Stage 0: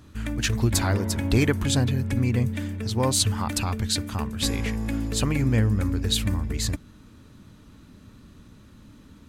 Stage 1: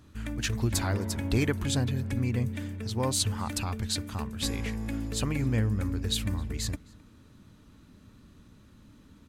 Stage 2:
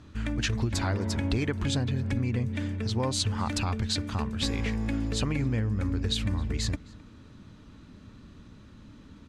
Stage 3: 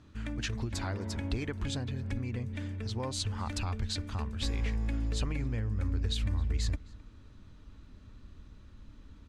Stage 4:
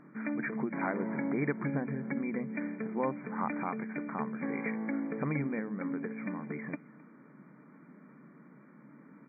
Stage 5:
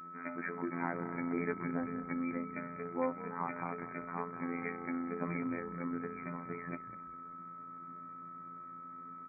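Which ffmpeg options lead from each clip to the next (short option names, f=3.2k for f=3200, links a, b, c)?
-filter_complex "[0:a]asplit=2[a][b];[b]adelay=262.4,volume=-24dB,highshelf=f=4k:g=-5.9[c];[a][c]amix=inputs=2:normalize=0,volume=-5.5dB"
-af "lowpass=5.9k,acompressor=threshold=-29dB:ratio=6,volume=5dB"
-af "asubboost=boost=5:cutoff=67,volume=-6.5dB"
-af "afftfilt=real='re*between(b*sr/4096,130,2400)':imag='im*between(b*sr/4096,130,2400)':win_size=4096:overlap=0.75,volume=6dB"
-filter_complex "[0:a]afftfilt=real='hypot(re,im)*cos(PI*b)':imag='0':win_size=2048:overlap=0.75,aeval=exprs='val(0)+0.00501*sin(2*PI*1300*n/s)':c=same,asplit=4[a][b][c][d];[b]adelay=197,afreqshift=-55,volume=-14.5dB[e];[c]adelay=394,afreqshift=-110,volume=-24.4dB[f];[d]adelay=591,afreqshift=-165,volume=-34.3dB[g];[a][e][f][g]amix=inputs=4:normalize=0"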